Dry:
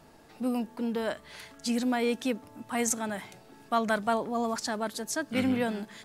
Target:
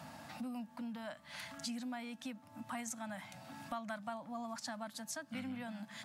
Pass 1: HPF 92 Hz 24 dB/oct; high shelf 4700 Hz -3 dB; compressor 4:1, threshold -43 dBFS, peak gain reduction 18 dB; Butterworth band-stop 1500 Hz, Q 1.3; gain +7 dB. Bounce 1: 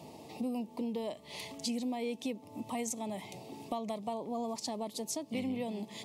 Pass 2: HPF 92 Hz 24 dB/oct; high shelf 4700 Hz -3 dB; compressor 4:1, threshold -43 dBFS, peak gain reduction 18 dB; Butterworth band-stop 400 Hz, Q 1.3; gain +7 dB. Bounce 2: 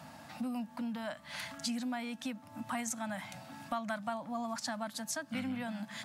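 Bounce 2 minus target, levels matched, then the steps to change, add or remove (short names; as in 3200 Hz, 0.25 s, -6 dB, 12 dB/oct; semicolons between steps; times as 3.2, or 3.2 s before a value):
compressor: peak gain reduction -5.5 dB
change: compressor 4:1, threshold -50.5 dBFS, peak gain reduction 23.5 dB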